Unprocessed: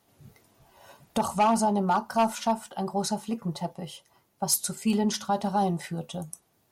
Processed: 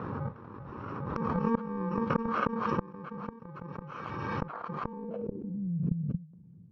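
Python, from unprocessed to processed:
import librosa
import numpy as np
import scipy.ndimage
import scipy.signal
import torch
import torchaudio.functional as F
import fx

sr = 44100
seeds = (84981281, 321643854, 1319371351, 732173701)

p1 = fx.bit_reversed(x, sr, seeds[0], block=64)
p2 = scipy.signal.sosfilt(scipy.signal.butter(2, 120.0, 'highpass', fs=sr, output='sos'), p1)
p3 = p2 + fx.echo_wet_highpass(p2, sr, ms=499, feedback_pct=77, hz=2700.0, wet_db=-22.0, dry=0)
p4 = fx.over_compress(p3, sr, threshold_db=-26.0, ratio=-0.5)
p5 = scipy.signal.sosfilt(scipy.signal.butter(6, 6300.0, 'lowpass', fs=sr, output='sos'), p4)
p6 = fx.gate_flip(p5, sr, shuts_db=-26.0, range_db=-35)
p7 = fx.tilt_eq(p6, sr, slope=-2.5)
p8 = fx.filter_sweep_lowpass(p7, sr, from_hz=1200.0, to_hz=170.0, start_s=4.82, end_s=5.71, q=3.8)
p9 = fx.peak_eq(p8, sr, hz=480.0, db=4.5, octaves=0.45)
p10 = fx.pre_swell(p9, sr, db_per_s=22.0)
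y = p10 * 10.0 ** (7.0 / 20.0)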